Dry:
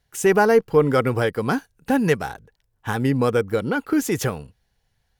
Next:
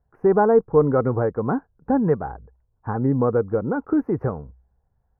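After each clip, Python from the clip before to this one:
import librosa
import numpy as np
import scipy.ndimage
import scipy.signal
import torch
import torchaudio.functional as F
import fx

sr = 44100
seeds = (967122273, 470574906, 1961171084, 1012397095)

y = scipy.signal.sosfilt(scipy.signal.cheby2(4, 50, 3100.0, 'lowpass', fs=sr, output='sos'), x)
y = fx.peak_eq(y, sr, hz=63.0, db=11.5, octaves=0.22)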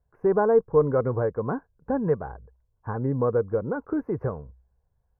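y = x + 0.31 * np.pad(x, (int(1.9 * sr / 1000.0), 0))[:len(x)]
y = F.gain(torch.from_numpy(y), -4.5).numpy()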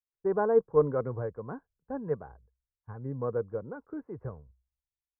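y = fx.band_widen(x, sr, depth_pct=100)
y = F.gain(torch.from_numpy(y), -8.5).numpy()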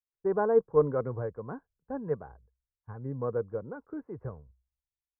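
y = x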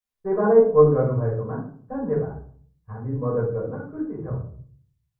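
y = fx.room_shoebox(x, sr, seeds[0], volume_m3=470.0, walls='furnished', distance_m=5.8)
y = F.gain(torch.from_numpy(y), -2.0).numpy()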